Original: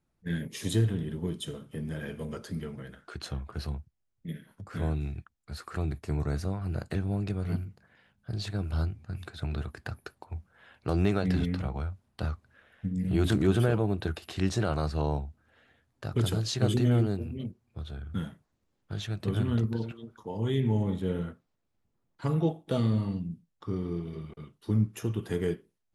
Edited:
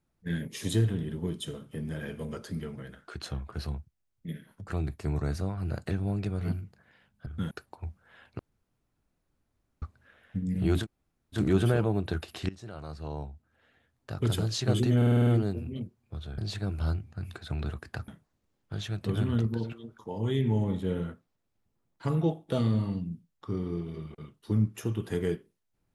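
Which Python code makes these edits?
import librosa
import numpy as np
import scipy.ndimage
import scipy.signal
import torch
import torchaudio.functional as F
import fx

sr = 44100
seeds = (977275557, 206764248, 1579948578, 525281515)

y = fx.edit(x, sr, fx.cut(start_s=4.68, length_s=1.04),
    fx.swap(start_s=8.3, length_s=1.7, other_s=18.02, other_length_s=0.25),
    fx.room_tone_fill(start_s=10.88, length_s=1.43),
    fx.insert_room_tone(at_s=13.31, length_s=0.55, crossfade_s=0.1),
    fx.fade_in_from(start_s=14.43, length_s=1.89, floor_db=-21.0),
    fx.stutter(start_s=16.91, slice_s=0.05, count=7), tone=tone)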